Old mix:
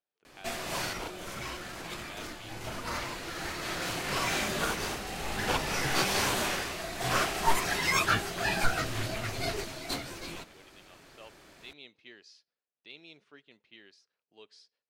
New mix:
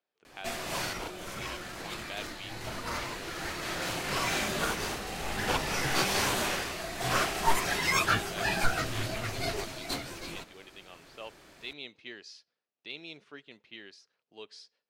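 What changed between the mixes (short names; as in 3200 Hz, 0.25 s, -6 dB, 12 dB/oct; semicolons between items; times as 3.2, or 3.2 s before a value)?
speech +7.0 dB; second sound: entry -1.05 s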